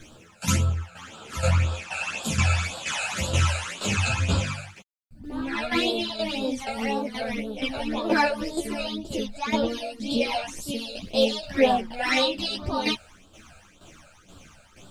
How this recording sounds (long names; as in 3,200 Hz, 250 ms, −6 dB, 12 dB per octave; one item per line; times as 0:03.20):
phaser sweep stages 12, 1.9 Hz, lowest notch 320–2,100 Hz
a quantiser's noise floor 12 bits, dither none
tremolo saw down 2.1 Hz, depth 70%
a shimmering, thickened sound